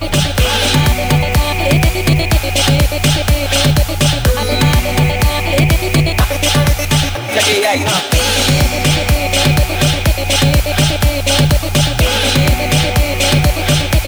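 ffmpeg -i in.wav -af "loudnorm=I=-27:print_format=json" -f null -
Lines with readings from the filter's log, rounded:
"input_i" : "-12.5",
"input_tp" : "-1.0",
"input_lra" : "0.3",
"input_thresh" : "-22.5",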